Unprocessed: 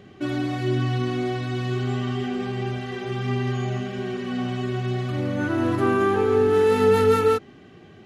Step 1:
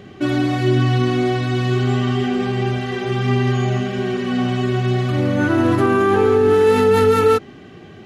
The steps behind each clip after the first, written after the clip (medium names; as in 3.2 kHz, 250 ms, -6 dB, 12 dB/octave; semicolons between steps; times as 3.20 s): loudness maximiser +13 dB; trim -5.5 dB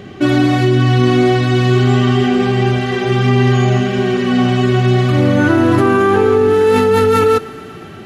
in parallel at -0.5 dB: compressor with a negative ratio -17 dBFS, ratio -0.5; on the sum: thinning echo 119 ms, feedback 83%, high-pass 340 Hz, level -20.5 dB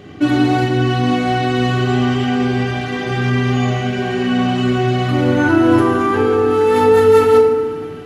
FDN reverb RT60 1.4 s, low-frequency decay 1.4×, high-frequency decay 0.45×, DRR -0.5 dB; trim -5.5 dB